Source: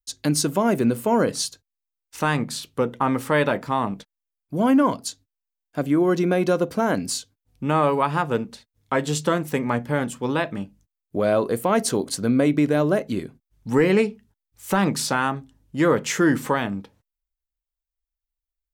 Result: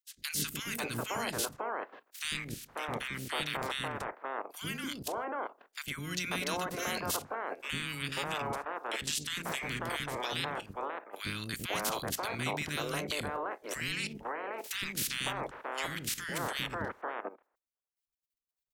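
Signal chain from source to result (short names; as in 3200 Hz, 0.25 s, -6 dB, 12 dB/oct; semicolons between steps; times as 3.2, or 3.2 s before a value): spectral limiter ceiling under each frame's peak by 28 dB; level quantiser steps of 14 dB; three bands offset in time highs, lows, mids 0.1/0.54 s, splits 330/1600 Hz; gain -4.5 dB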